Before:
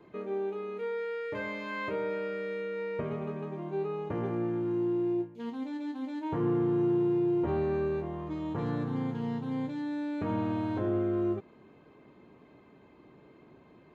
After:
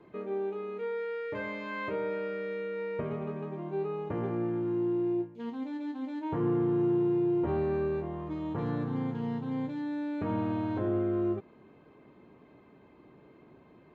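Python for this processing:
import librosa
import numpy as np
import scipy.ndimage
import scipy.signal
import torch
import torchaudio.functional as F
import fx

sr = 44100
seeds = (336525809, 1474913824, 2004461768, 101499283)

y = fx.lowpass(x, sr, hz=3800.0, slope=6)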